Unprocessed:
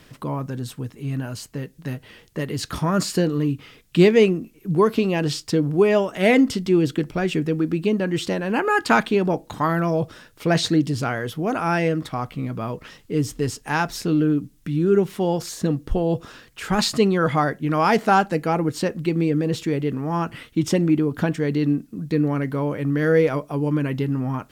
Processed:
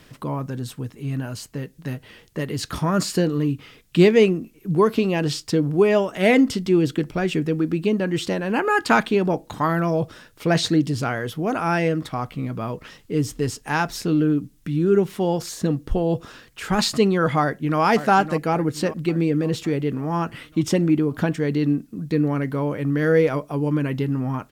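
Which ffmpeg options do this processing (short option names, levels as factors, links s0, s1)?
-filter_complex "[0:a]asplit=2[s0][s1];[s1]afade=t=in:st=17.4:d=0.01,afade=t=out:st=17.81:d=0.01,aecho=0:1:560|1120|1680|2240|2800|3360:0.281838|0.155011|0.0852561|0.0468908|0.02579|0.0141845[s2];[s0][s2]amix=inputs=2:normalize=0"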